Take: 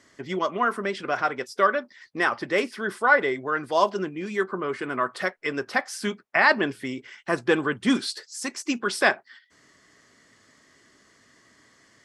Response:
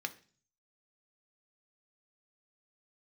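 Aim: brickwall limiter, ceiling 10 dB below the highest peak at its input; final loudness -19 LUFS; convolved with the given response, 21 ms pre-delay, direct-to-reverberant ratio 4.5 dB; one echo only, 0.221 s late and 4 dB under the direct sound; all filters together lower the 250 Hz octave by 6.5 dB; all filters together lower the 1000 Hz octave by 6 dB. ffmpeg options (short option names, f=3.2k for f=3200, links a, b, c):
-filter_complex "[0:a]equalizer=f=250:t=o:g=-8,equalizer=f=1k:t=o:g=-7.5,alimiter=limit=-17.5dB:level=0:latency=1,aecho=1:1:221:0.631,asplit=2[a][b];[1:a]atrim=start_sample=2205,adelay=21[c];[b][c]afir=irnorm=-1:irlink=0,volume=-6dB[d];[a][d]amix=inputs=2:normalize=0,volume=10dB"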